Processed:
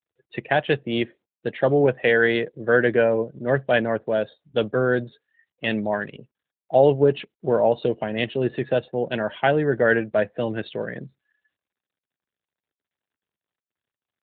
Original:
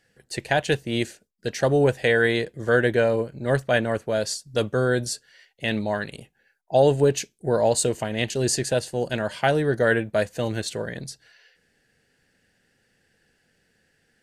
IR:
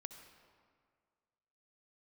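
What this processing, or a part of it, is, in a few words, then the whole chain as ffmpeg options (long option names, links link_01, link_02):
mobile call with aggressive noise cancelling: -filter_complex "[0:a]asplit=3[link_01][link_02][link_03];[link_01]afade=type=out:start_time=1.79:duration=0.02[link_04];[link_02]highpass=frequency=61:poles=1,afade=type=in:start_time=1.79:duration=0.02,afade=type=out:start_time=2.79:duration=0.02[link_05];[link_03]afade=type=in:start_time=2.79:duration=0.02[link_06];[link_04][link_05][link_06]amix=inputs=3:normalize=0,highpass=140,afftdn=noise_reduction=36:noise_floor=-41,volume=2dB" -ar 8000 -c:a libopencore_amrnb -b:a 12200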